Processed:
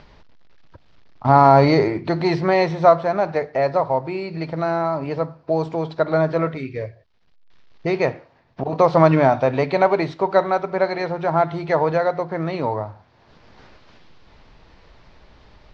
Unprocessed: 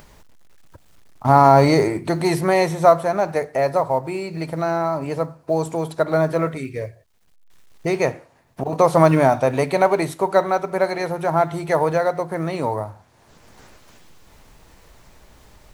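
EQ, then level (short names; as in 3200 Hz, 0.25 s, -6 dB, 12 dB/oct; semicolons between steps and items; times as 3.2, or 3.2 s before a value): steep low-pass 5000 Hz 36 dB/oct; 0.0 dB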